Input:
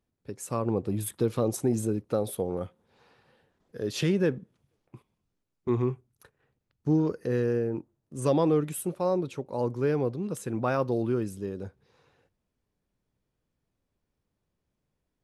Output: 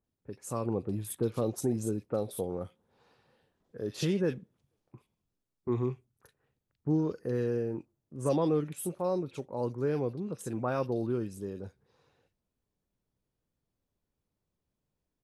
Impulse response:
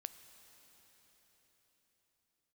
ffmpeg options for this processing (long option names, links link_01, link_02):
-filter_complex "[0:a]acrossover=split=2000[link_01][link_02];[link_02]adelay=40[link_03];[link_01][link_03]amix=inputs=2:normalize=0,volume=-4dB"